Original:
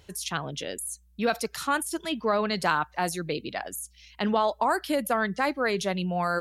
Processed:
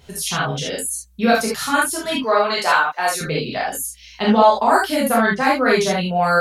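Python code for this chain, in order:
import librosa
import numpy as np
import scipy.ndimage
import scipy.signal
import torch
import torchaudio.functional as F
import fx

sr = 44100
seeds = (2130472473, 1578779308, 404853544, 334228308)

y = fx.highpass(x, sr, hz=480.0, slope=12, at=(2.16, 3.21))
y = fx.rev_gated(y, sr, seeds[0], gate_ms=100, shape='flat', drr_db=-6.5)
y = F.gain(torch.from_numpy(y), 2.5).numpy()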